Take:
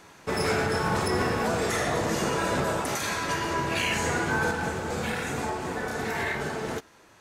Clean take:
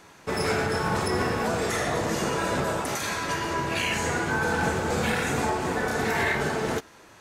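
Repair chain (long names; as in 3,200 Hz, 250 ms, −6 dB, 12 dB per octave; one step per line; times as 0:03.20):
clipped peaks rebuilt −17.5 dBFS
level correction +4.5 dB, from 0:04.51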